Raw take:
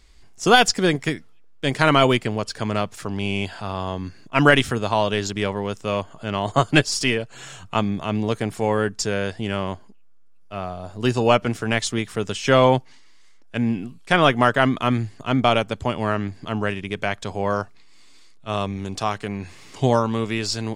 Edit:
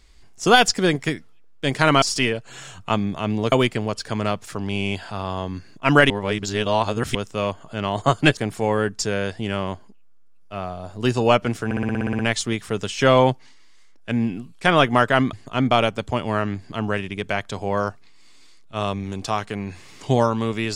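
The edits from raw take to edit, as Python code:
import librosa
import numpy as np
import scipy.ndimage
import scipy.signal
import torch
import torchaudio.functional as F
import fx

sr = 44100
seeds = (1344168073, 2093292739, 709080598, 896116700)

y = fx.edit(x, sr, fx.reverse_span(start_s=4.6, length_s=1.05),
    fx.move(start_s=6.87, length_s=1.5, to_s=2.02),
    fx.stutter(start_s=11.65, slice_s=0.06, count=10),
    fx.cut(start_s=14.79, length_s=0.27), tone=tone)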